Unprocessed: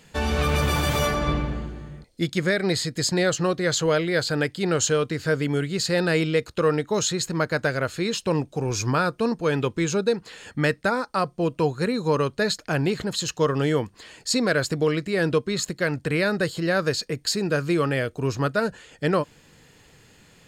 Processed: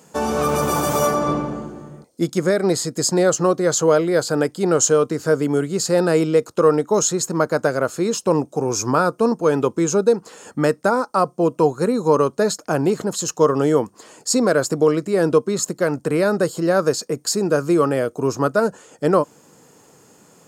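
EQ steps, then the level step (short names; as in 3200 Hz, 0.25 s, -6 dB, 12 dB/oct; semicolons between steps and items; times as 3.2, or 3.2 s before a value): HPF 210 Hz 12 dB/oct; band shelf 2700 Hz -12.5 dB; +7.0 dB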